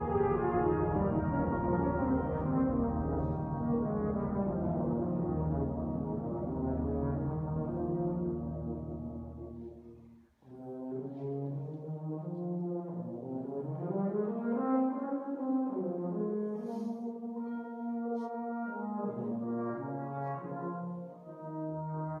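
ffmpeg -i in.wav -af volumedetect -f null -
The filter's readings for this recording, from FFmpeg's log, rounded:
mean_volume: -34.3 dB
max_volume: -16.9 dB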